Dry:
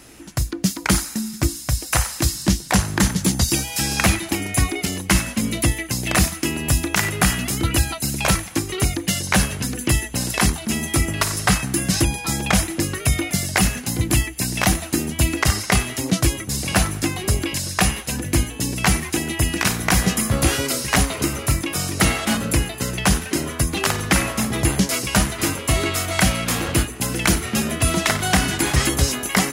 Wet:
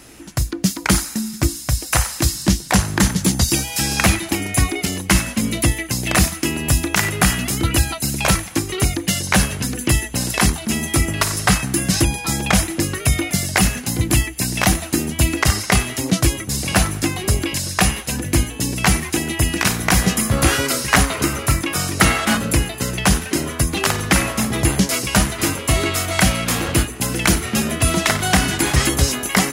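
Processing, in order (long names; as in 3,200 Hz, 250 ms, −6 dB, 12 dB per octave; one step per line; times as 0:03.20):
0:20.36–0:22.39: dynamic equaliser 1,400 Hz, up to +5 dB, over −36 dBFS, Q 1.2
level +2 dB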